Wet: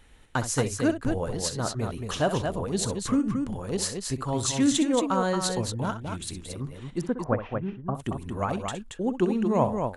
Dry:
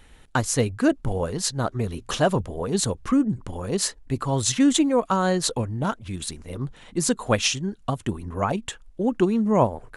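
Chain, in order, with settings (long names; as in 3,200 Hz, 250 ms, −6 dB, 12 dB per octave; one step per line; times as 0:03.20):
0:07.01–0:07.95: low-pass filter 1,500 Hz 24 dB per octave
on a send: multi-tap delay 63/227 ms −11.5/−5.5 dB
on the sum: level −4.5 dB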